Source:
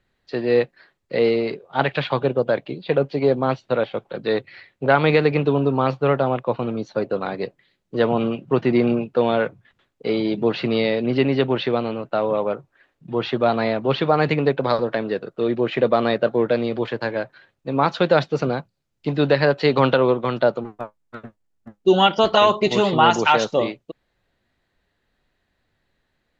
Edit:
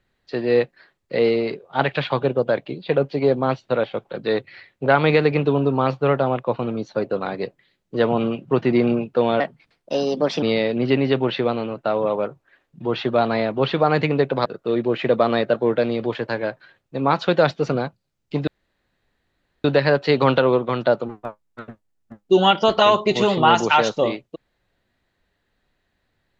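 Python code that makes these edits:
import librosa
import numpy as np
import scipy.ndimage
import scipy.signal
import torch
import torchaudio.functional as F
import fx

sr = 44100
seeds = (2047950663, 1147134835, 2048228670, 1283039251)

y = fx.edit(x, sr, fx.speed_span(start_s=9.4, length_s=1.3, speed=1.27),
    fx.cut(start_s=14.73, length_s=0.45),
    fx.insert_room_tone(at_s=19.2, length_s=1.17), tone=tone)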